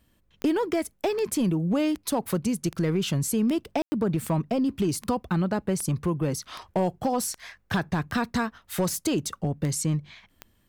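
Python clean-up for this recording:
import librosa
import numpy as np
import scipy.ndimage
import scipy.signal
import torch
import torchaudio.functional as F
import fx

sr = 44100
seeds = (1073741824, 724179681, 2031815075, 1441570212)

y = fx.fix_declip(x, sr, threshold_db=-17.5)
y = fx.fix_declick_ar(y, sr, threshold=10.0)
y = fx.fix_ambience(y, sr, seeds[0], print_start_s=10.17, print_end_s=10.67, start_s=3.82, end_s=3.92)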